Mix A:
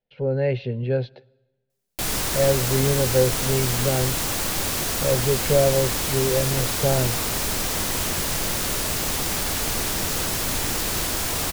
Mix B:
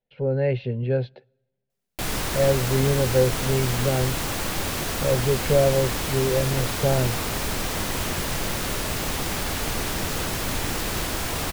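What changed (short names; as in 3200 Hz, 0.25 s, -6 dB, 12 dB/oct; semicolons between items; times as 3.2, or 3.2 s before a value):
speech: send -8.5 dB; master: add tone controls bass +1 dB, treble -6 dB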